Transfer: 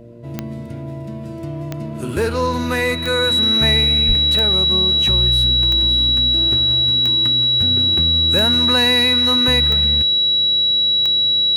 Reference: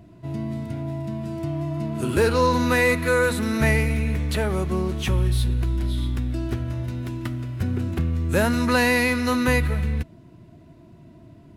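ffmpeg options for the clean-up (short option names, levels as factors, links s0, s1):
-filter_complex "[0:a]adeclick=t=4,bandreject=f=117.7:t=h:w=4,bandreject=f=235.4:t=h:w=4,bandreject=f=353.1:t=h:w=4,bandreject=f=470.8:t=h:w=4,bandreject=f=588.5:t=h:w=4,bandreject=f=3900:w=30,asplit=3[s0][s1][s2];[s0]afade=t=out:st=4.07:d=0.02[s3];[s1]highpass=f=140:w=0.5412,highpass=f=140:w=1.3066,afade=t=in:st=4.07:d=0.02,afade=t=out:st=4.19:d=0.02[s4];[s2]afade=t=in:st=4.19:d=0.02[s5];[s3][s4][s5]amix=inputs=3:normalize=0"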